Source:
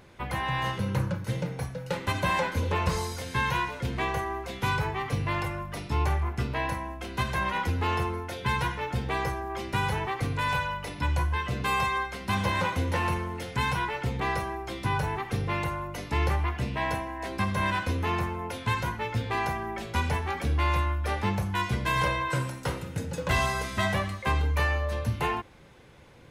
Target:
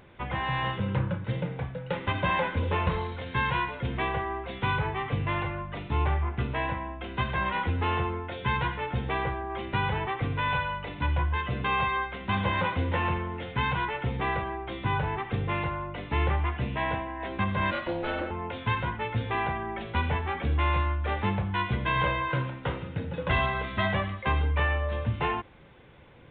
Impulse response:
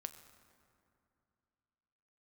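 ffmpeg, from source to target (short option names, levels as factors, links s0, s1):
-filter_complex "[0:a]aresample=8000,aresample=44100,asettb=1/sr,asplit=3[s0][s1][s2];[s0]atrim=end=17.714[s3];[s1]atrim=start=17.71:end=18.31,asetpts=PTS-STARTPTS,afade=t=in:d=0.004:c=qsin,afade=t=out:st=0.596:d=0.004:c=qsin,aeval=exprs='val(0)*sin(2*PI*430*n/s)':c=same[s4];[s2]atrim=start=18.306[s5];[s3][s4]acrossfade=d=0.004:c1=hsin:c2=qsin[s6];[s6][s5]acrossfade=d=0.004:c1=qsin:c2=hsin"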